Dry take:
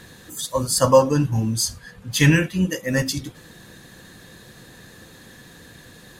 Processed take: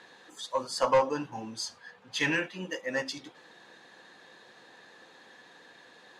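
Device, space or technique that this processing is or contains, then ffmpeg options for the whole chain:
intercom: -af "highpass=420,lowpass=4.3k,equalizer=f=850:t=o:w=0.5:g=6,asoftclip=type=tanh:threshold=-10dB,volume=-6dB"

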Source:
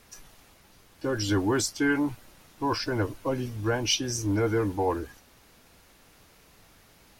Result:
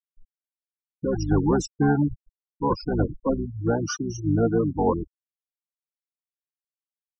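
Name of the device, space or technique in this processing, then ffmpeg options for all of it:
octave pedal: -filter_complex "[0:a]asplit=2[a][b];[b]asetrate=22050,aresample=44100,atempo=2,volume=-3dB[c];[a][c]amix=inputs=2:normalize=0,asettb=1/sr,asplit=3[d][e][f];[d]atrim=end=3.454[g];[e]atrim=start=3.45:end=4.76,asetpts=PTS-STARTPTS,afade=t=in:d=0.004:c=qsin,afade=t=out:st=1.306:d=0.004:c=qsin,highpass=86[h];[f]atrim=start=4.756[i];[g][h]acrossfade=d=0.004:c1=hsin:c2=qsin[j];[j][i]acrossfade=d=0.004:c1=qsin:c2=hsin,afftfilt=real='re*gte(hypot(re,im),0.0891)':imag='im*gte(hypot(re,im),0.0891)':win_size=1024:overlap=0.75,firequalizer=gain_entry='entry(1300,0);entry(2200,-29);entry(5000,-6)':delay=0.05:min_phase=1,volume=3dB"

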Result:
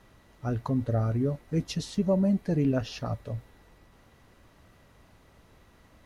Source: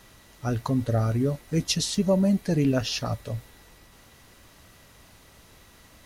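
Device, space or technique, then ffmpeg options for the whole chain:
through cloth: -af "highshelf=f=2.7k:g=-13,volume=-2.5dB"

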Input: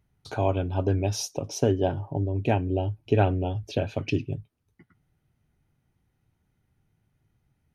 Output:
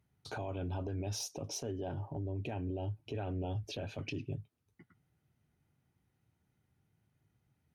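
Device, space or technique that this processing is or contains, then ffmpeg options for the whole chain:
podcast mastering chain: -af "highpass=75,deesser=0.65,acompressor=threshold=-27dB:ratio=3,alimiter=level_in=2.5dB:limit=-24dB:level=0:latency=1:release=17,volume=-2.5dB,volume=-3.5dB" -ar 44100 -c:a libmp3lame -b:a 96k

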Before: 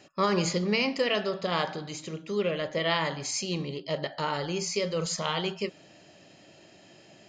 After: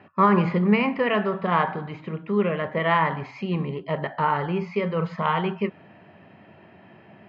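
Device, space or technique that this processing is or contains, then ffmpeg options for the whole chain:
bass cabinet: -af "highpass=89,equalizer=f=92:t=q:w=4:g=8,equalizer=f=210:t=q:w=4:g=5,equalizer=f=310:t=q:w=4:g=-6,equalizer=f=560:t=q:w=4:g=-6,equalizer=f=1k:t=q:w=4:g=6,lowpass=f=2.2k:w=0.5412,lowpass=f=2.2k:w=1.3066,volume=6.5dB"

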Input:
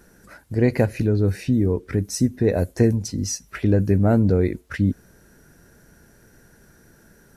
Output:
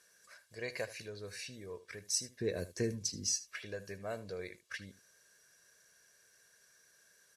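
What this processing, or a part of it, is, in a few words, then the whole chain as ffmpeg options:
piezo pickup straight into a mixer: -filter_complex "[0:a]aecho=1:1:1.8:0.62,asettb=1/sr,asplit=3[a][b][c];[a]atrim=end=2.404[d];[b]atrim=start=2.4:end=3.34,asetpts=PTS-STARTPTS,afade=t=in:d=0.004:c=qsin,afade=t=out:st=0.936:d=0.004:c=qsin,lowshelf=f=450:t=q:w=1.5:g=11.5[e];[c]atrim=start=3.336[f];[d][e]acrossfade=d=0.004:c1=hsin:c2=qsin[g];[g][f]acrossfade=d=0.004:c1=qsin:c2=hsin,lowpass=5.6k,aderivative,aecho=1:1:77:0.15,volume=1dB"

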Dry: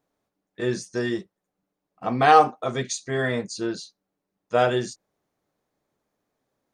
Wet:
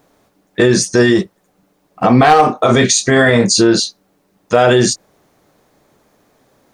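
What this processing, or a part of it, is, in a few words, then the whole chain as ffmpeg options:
loud club master: -filter_complex "[0:a]asettb=1/sr,asplit=3[a][b][c];[a]atrim=end=2.194[d];[b]atrim=start=2.19:end=3.8,asetpts=PTS-STARTPTS,afade=t=in:d=0.004:c=qsin,afade=t=out:st=1.606:d=0.004:c=qsin,asplit=2[e][f];[f]adelay=26,volume=-6dB[g];[e][g]amix=inputs=2:normalize=0,atrim=end_sample=71001[h];[c]atrim=start=3.796[i];[d][h]acrossfade=d=0.004:c1=hsin:c2=qsin[j];[j][i]acrossfade=d=0.004:c1=qsin:c2=hsin,acompressor=threshold=-24dB:ratio=2,asoftclip=type=hard:threshold=-15dB,alimiter=level_in=23.5dB:limit=-1dB:release=50:level=0:latency=1,volume=-1dB"

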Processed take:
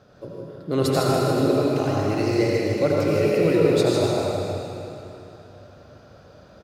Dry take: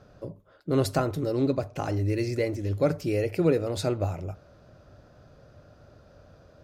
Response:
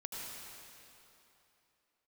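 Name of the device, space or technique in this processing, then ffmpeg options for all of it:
PA in a hall: -filter_complex "[0:a]highpass=f=120:p=1,equalizer=f=3.6k:t=o:w=0.68:g=3.5,aecho=1:1:154:0.473[a];[1:a]atrim=start_sample=2205[b];[a][b]afir=irnorm=-1:irlink=0,volume=6.5dB"

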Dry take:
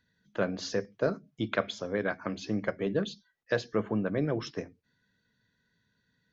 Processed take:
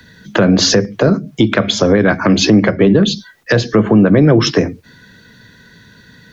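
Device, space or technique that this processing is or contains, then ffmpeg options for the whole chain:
mastering chain: -filter_complex "[0:a]equalizer=f=340:t=o:w=0.34:g=3,acrossover=split=110|220[a][b][c];[a]acompressor=threshold=-54dB:ratio=4[d];[b]acompressor=threshold=-38dB:ratio=4[e];[c]acompressor=threshold=-38dB:ratio=4[f];[d][e][f]amix=inputs=3:normalize=0,acompressor=threshold=-37dB:ratio=1.5,asoftclip=type=tanh:threshold=-24dB,alimiter=level_in=32dB:limit=-1dB:release=50:level=0:latency=1,asettb=1/sr,asplit=3[g][h][i];[g]atrim=end=2.474[j];[h]atrim=start=2.47:end=3.04,asetpts=PTS-STARTPTS,afade=t=in:d=0.004:c=qsin,afade=t=out:st=0.566:d=0.004:c=qsin,lowpass=f=5.6k:w=0.5412,lowpass=f=5.6k:w=1.3066[k];[i]atrim=start=3.036[l];[j][k]acrossfade=d=0.004:c1=hsin:c2=qsin[m];[m][l]acrossfade=d=0.004:c1=qsin:c2=hsin,volume=-1dB"

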